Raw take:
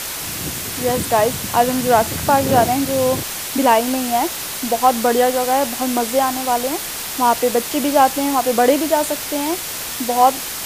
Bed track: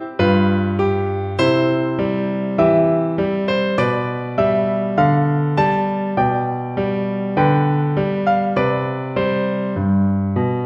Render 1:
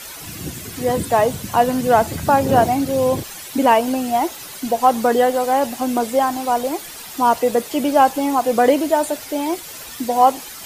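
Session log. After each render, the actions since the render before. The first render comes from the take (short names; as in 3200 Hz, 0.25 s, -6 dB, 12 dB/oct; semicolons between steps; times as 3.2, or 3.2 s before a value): denoiser 11 dB, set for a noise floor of -27 dBFS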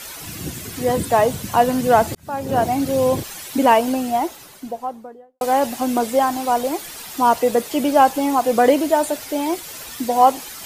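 2.15–2.87 fade in; 3.77–5.41 studio fade out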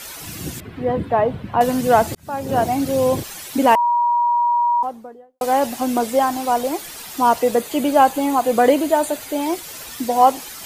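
0.6–1.61 air absorption 480 m; 3.75–4.83 bleep 956 Hz -14 dBFS; 7.57–9.41 notch 5400 Hz, Q 6.4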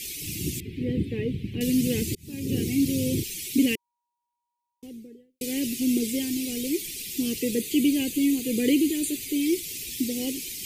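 elliptic band-stop 390–2300 Hz, stop band 40 dB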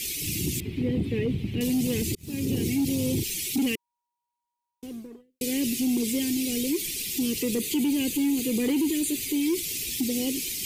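sample leveller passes 1; limiter -19 dBFS, peak gain reduction 7.5 dB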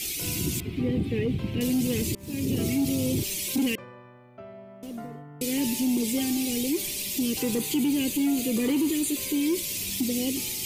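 add bed track -27.5 dB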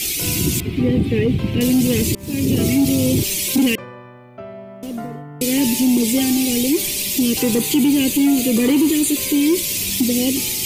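gain +9.5 dB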